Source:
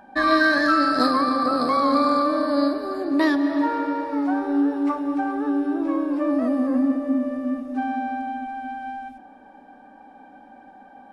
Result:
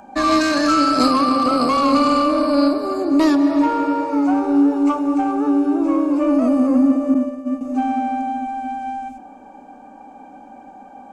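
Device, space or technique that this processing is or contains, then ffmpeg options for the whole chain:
one-band saturation: -filter_complex "[0:a]asettb=1/sr,asplit=3[link_01][link_02][link_03];[link_01]atrim=end=7.144[link_04];[link_02]atrim=start=7.14:end=7.61,asetpts=PTS-STARTPTS,afade=type=in:duration=0.004:curve=qsin,afade=type=out:start_time=0.466:duration=0.004:curve=qsin,agate=range=-33dB:threshold=-20dB:ratio=3:detection=peak[link_05];[link_03]atrim=start=7.606[link_06];[link_04][link_05]acrossfade=duration=0.004:curve1=hsin:curve2=qsin[link_07];[link_07][link_06]acrossfade=duration=0.004:curve1=qsin:curve2=hsin,acrossover=split=320|2400[link_08][link_09][link_10];[link_09]asoftclip=type=tanh:threshold=-21dB[link_11];[link_08][link_11][link_10]amix=inputs=3:normalize=0,superequalizer=11b=0.355:13b=0.562:15b=2.82,volume=6.5dB"

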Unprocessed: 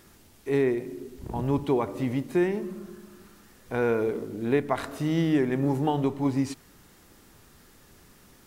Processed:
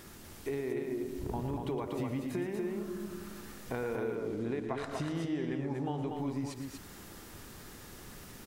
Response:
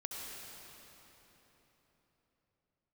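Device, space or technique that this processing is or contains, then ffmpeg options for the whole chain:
serial compression, peaks first: -filter_complex "[0:a]acompressor=threshold=-33dB:ratio=5,acompressor=threshold=-46dB:ratio=1.5,asettb=1/sr,asplit=3[link_01][link_02][link_03];[link_01]atrim=end=4.154[link_04];[link_02]atrim=start=4.15:end=6.08,asetpts=PTS-STARTPTS,afade=type=in:duration=0.004:curve=qsin,afade=type=out:start_time=1.926:duration=0.004:curve=qsin,lowpass=7800[link_05];[link_03]atrim=start=6.076[link_06];[link_04][link_05]acrossfade=duration=0.004:curve1=hsin:curve2=qsin[link_07];[link_07][link_06]acrossfade=duration=0.004:curve1=qsin:curve2=hsin,aecho=1:1:113.7|239.1:0.316|0.631,volume=4dB"

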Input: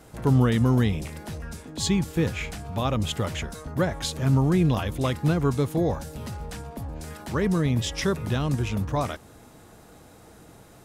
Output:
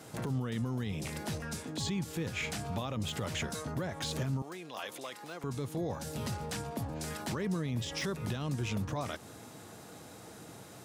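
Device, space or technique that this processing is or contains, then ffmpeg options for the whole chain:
broadcast voice chain: -filter_complex "[0:a]highpass=frequency=92:width=0.5412,highpass=frequency=92:width=1.3066,deesser=0.8,acompressor=threshold=-30dB:ratio=5,equalizer=frequency=5400:width_type=o:width=2.1:gain=4,alimiter=level_in=2dB:limit=-24dB:level=0:latency=1:release=11,volume=-2dB,asettb=1/sr,asplit=3[link_01][link_02][link_03];[link_01]atrim=end=4.424[link_04];[link_02]atrim=start=4.42:end=5.44,asetpts=PTS-STARTPTS,afade=type=in:duration=0.004:curve=qsin,afade=type=out:start_time=1.016:duration=0.004:curve=qsin,highpass=530[link_05];[link_03]atrim=start=5.436[link_06];[link_04][link_05]acrossfade=duration=0.004:curve1=hsin:curve2=qsin[link_07];[link_07][link_06]acrossfade=duration=0.004:curve1=qsin:curve2=hsin"

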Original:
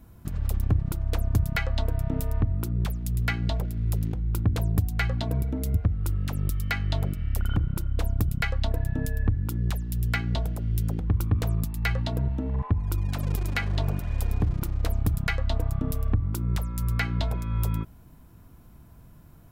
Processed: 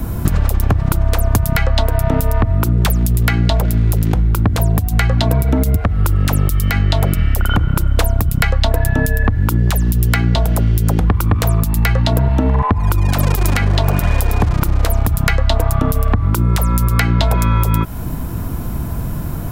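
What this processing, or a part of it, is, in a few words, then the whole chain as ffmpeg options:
mastering chain: -filter_complex "[0:a]equalizer=frequency=3200:width_type=o:width=2.3:gain=-3.5,acrossover=split=310|640[link_01][link_02][link_03];[link_01]acompressor=threshold=-37dB:ratio=4[link_04];[link_02]acompressor=threshold=-54dB:ratio=4[link_05];[link_03]acompressor=threshold=-41dB:ratio=4[link_06];[link_04][link_05][link_06]amix=inputs=3:normalize=0,acompressor=threshold=-40dB:ratio=3,alimiter=level_in=30dB:limit=-1dB:release=50:level=0:latency=1,volume=-1dB"

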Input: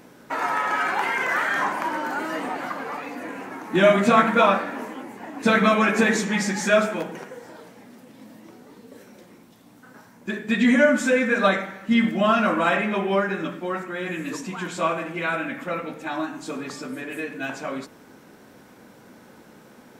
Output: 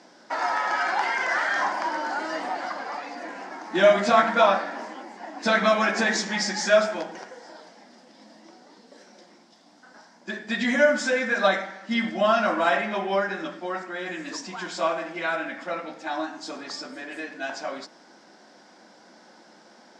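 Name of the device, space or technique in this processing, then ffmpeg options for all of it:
television speaker: -af "highpass=frequency=230:width=0.5412,highpass=frequency=230:width=1.3066,equalizer=frequency=260:width_type=q:width=4:gain=-8,equalizer=frequency=440:width_type=q:width=4:gain=-10,equalizer=frequency=710:width_type=q:width=4:gain=4,equalizer=frequency=1200:width_type=q:width=4:gain=-4,equalizer=frequency=2500:width_type=q:width=4:gain=-6,equalizer=frequency=5000:width_type=q:width=4:gain=10,lowpass=frequency=7100:width=0.5412,lowpass=frequency=7100:width=1.3066"

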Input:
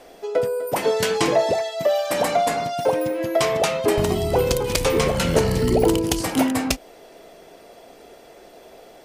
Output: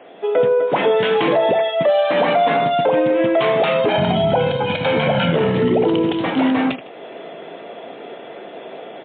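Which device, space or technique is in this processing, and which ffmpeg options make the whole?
low-bitrate web radio: -filter_complex "[0:a]highpass=frequency=140:width=0.5412,highpass=frequency=140:width=1.3066,asplit=3[link_01][link_02][link_03];[link_01]afade=type=out:start_time=3.88:duration=0.02[link_04];[link_02]aecho=1:1:1.3:0.81,afade=type=in:start_time=3.88:duration=0.02,afade=type=out:start_time=5.31:duration=0.02[link_05];[link_03]afade=type=in:start_time=5.31:duration=0.02[link_06];[link_04][link_05][link_06]amix=inputs=3:normalize=0,aecho=1:1:78|156|234:0.0891|0.0303|0.0103,dynaudnorm=framelen=150:gausssize=3:maxgain=8dB,alimiter=limit=-11.5dB:level=0:latency=1:release=51,volume=4dB" -ar 8000 -c:a libmp3lame -b:a 24k

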